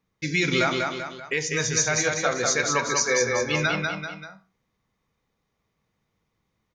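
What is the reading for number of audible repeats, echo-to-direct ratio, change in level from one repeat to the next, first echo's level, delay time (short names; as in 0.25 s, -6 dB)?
3, -2.5 dB, -6.5 dB, -3.5 dB, 0.194 s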